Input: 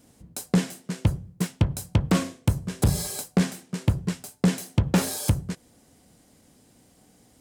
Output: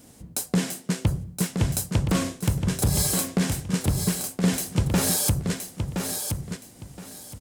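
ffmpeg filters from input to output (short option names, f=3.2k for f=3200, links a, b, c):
-af "highshelf=f=6.3k:g=4,alimiter=limit=-18dB:level=0:latency=1:release=118,aecho=1:1:1020|2040|3060:0.501|0.115|0.0265,volume=5.5dB"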